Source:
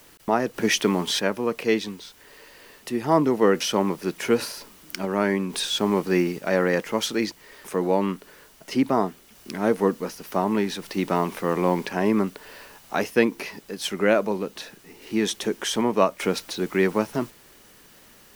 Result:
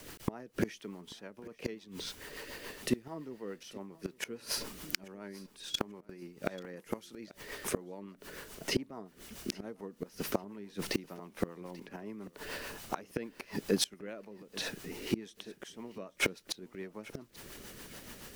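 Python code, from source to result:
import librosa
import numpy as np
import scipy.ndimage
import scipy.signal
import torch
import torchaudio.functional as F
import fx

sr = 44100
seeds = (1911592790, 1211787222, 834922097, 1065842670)

y = fx.low_shelf(x, sr, hz=250.0, db=3.0)
y = fx.level_steps(y, sr, step_db=24, at=(5.46, 6.22))
y = fx.rotary(y, sr, hz=7.0)
y = fx.gate_flip(y, sr, shuts_db=-21.0, range_db=-28)
y = fx.peak_eq(y, sr, hz=11000.0, db=fx.line((6.75, 13.5), (7.2, 3.0)), octaves=0.8, at=(6.75, 7.2), fade=0.02)
y = fx.echo_feedback(y, sr, ms=838, feedback_pct=24, wet_db=-21.0)
y = fx.band_squash(y, sr, depth_pct=70, at=(11.81, 12.38))
y = y * librosa.db_to_amplitude(5.0)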